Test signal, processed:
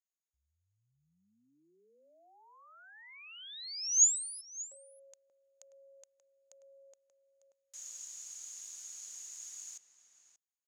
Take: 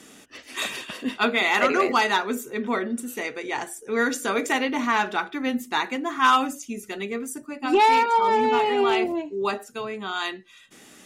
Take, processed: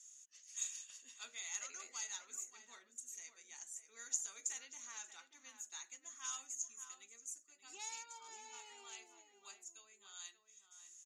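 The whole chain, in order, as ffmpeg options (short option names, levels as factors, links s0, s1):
-filter_complex "[0:a]bandpass=f=6700:t=q:w=17:csg=0,asplit=2[s0][s1];[s1]adelay=583.1,volume=0.355,highshelf=f=4000:g=-13.1[s2];[s0][s2]amix=inputs=2:normalize=0,volume=1.78"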